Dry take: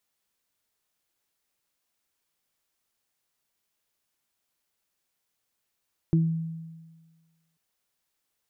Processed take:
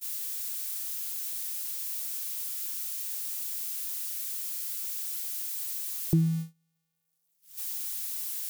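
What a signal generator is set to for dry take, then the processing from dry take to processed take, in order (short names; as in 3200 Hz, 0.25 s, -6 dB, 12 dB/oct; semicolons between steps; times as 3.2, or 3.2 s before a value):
additive tone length 1.44 s, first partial 163 Hz, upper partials -5.5 dB, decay 1.45 s, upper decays 0.29 s, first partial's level -17 dB
switching spikes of -28.5 dBFS; gate -32 dBFS, range -34 dB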